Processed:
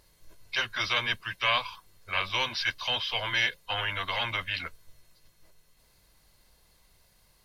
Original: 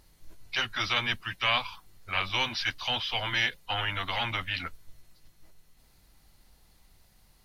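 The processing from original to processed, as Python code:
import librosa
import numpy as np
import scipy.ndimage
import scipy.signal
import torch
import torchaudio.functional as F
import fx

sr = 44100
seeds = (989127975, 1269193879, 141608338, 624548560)

y = fx.low_shelf(x, sr, hz=110.0, db=-8.5)
y = y + 0.38 * np.pad(y, (int(1.9 * sr / 1000.0), 0))[:len(y)]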